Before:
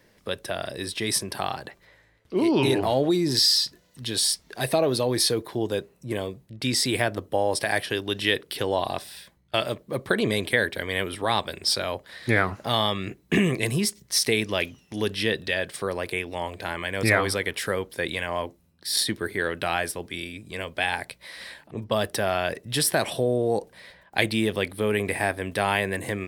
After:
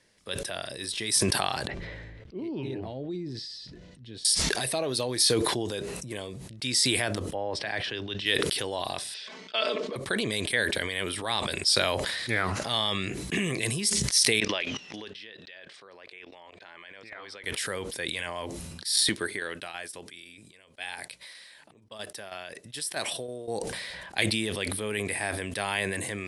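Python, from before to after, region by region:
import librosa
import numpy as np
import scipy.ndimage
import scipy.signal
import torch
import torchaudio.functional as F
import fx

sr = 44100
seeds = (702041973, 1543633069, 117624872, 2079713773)

y = fx.chain(x, sr, fx.lowpass(hz=1600.0, slope=12),
    fx.peak_eq(hz=1100.0, db=-14.5, octaves=2.2), at=(1.67, 4.25))
y = fx.chain(y, sr, fx.air_absorb(metres=180.0),
    fx.band_widen(depth_pct=40), at=(7.34, 8.26))
y = fx.chain(y, sr, fx.cabinet(low_hz=290.0, low_slope=24, high_hz=5100.0, hz=(790.0, 1800.0, 4000.0), db=(-6, -4, -4)),
    fx.comb(ms=4.6, depth=0.81), at=(9.14, 9.96))
y = fx.chain(y, sr, fx.highpass(hz=550.0, slope=6),
    fx.air_absorb(metres=170.0),
    fx.level_steps(step_db=21), at=(14.4, 17.44))
y = fx.chain(y, sr, fx.low_shelf(hz=130.0, db=-8.5),
    fx.tremolo_shape(shape='saw_down', hz=3.1, depth_pct=50),
    fx.upward_expand(threshold_db=-40.0, expansion=2.5), at=(19.09, 23.48))
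y = scipy.signal.sosfilt(scipy.signal.butter(12, 11000.0, 'lowpass', fs=sr, output='sos'), y)
y = fx.high_shelf(y, sr, hz=2300.0, db=11.0)
y = fx.sustainer(y, sr, db_per_s=24.0)
y = F.gain(torch.from_numpy(y), -9.5).numpy()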